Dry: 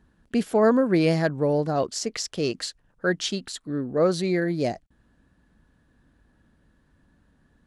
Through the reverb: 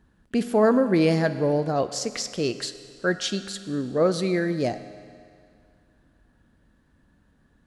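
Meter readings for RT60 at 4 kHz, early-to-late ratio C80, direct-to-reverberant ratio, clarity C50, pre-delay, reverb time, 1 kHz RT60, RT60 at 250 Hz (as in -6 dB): 2.1 s, 13.0 dB, 11.0 dB, 12.0 dB, 10 ms, 2.2 s, 2.2 s, 2.2 s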